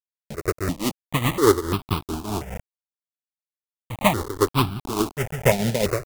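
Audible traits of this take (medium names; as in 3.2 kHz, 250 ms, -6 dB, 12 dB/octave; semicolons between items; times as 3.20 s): a quantiser's noise floor 6-bit, dither none; tremolo triangle 4.8 Hz, depth 75%; aliases and images of a low sample rate 1.6 kHz, jitter 20%; notches that jump at a steady rate 2.9 Hz 310–1900 Hz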